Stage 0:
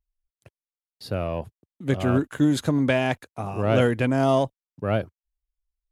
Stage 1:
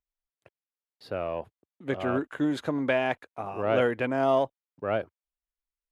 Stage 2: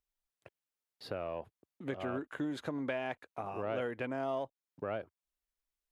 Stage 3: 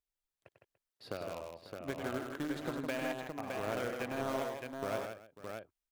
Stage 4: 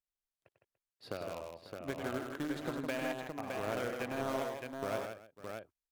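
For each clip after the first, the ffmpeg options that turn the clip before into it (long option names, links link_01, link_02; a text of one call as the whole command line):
ffmpeg -i in.wav -af "bass=frequency=250:gain=-13,treble=frequency=4000:gain=-14,volume=-1.5dB" out.wav
ffmpeg -i in.wav -af "acompressor=threshold=-40dB:ratio=2.5,volume=1dB" out.wav
ffmpeg -i in.wav -filter_complex "[0:a]asplit=2[link_01][link_02];[link_02]acrusher=bits=4:mix=0:aa=0.000001,volume=-7dB[link_03];[link_01][link_03]amix=inputs=2:normalize=0,aecho=1:1:97|159|291|544|615:0.422|0.501|0.126|0.168|0.562,volume=-4.5dB" out.wav
ffmpeg -i in.wav -af "agate=range=-7dB:threshold=-57dB:ratio=16:detection=peak" -ar 48000 -c:a libvorbis -b:a 192k out.ogg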